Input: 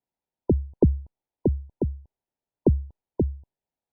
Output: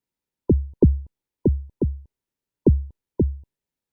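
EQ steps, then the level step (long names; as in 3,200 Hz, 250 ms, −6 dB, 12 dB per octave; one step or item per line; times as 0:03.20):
parametric band 720 Hz −12 dB 0.66 octaves
+4.0 dB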